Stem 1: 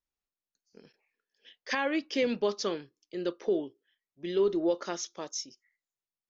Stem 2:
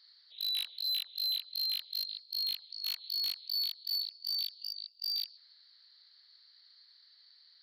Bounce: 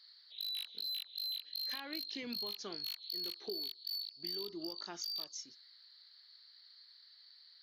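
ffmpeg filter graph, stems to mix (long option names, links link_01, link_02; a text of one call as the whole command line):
ffmpeg -i stem1.wav -i stem2.wav -filter_complex "[0:a]highpass=47,equalizer=frequency=530:width=3.9:gain=-11,flanger=delay=0.8:depth=1.8:regen=62:speed=0.43:shape=triangular,volume=-3dB[link_01];[1:a]volume=1dB[link_02];[link_01][link_02]amix=inputs=2:normalize=0,acompressor=threshold=-39dB:ratio=6" out.wav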